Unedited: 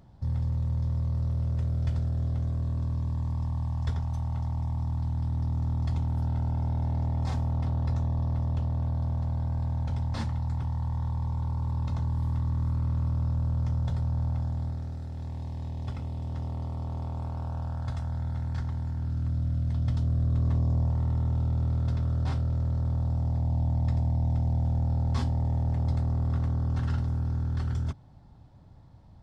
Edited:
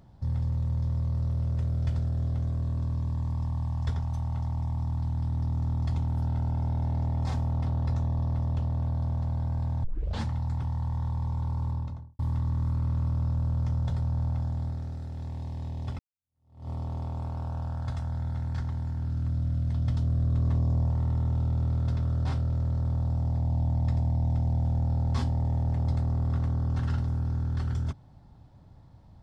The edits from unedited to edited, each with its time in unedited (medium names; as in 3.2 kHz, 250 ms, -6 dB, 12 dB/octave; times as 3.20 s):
9.84 s: tape start 0.37 s
11.62–12.19 s: studio fade out
15.99–16.69 s: fade in exponential